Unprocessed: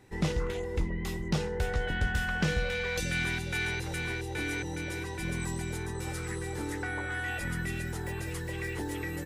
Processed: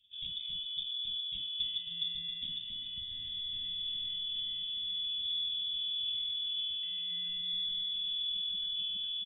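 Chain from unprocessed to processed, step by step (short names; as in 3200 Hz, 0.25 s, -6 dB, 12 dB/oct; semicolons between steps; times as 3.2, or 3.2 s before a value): in parallel at +2 dB: vocal rider; on the sum: bell 100 Hz +14 dB 0.63 oct; inverted band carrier 3500 Hz; inverse Chebyshev band-stop 540–1100 Hz, stop band 70 dB; tilt shelf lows +7.5 dB; resonator 310 Hz, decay 0.49 s, harmonics all, mix 80%; on a send: echo 0.269 s -6 dB; on the sum: gain -5 dB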